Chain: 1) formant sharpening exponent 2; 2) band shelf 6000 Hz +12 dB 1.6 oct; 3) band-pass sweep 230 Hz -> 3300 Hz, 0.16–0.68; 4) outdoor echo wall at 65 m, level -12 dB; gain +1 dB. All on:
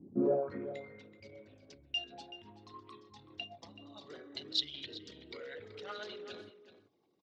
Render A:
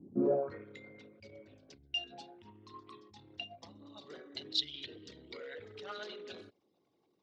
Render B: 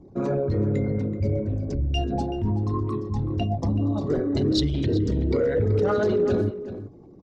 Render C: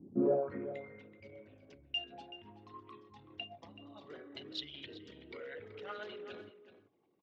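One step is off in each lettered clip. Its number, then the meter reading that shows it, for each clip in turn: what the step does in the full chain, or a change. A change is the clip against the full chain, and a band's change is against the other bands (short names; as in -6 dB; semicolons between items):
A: 4, echo-to-direct -13.0 dB to none; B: 3, 125 Hz band +16.0 dB; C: 2, 4 kHz band -5.0 dB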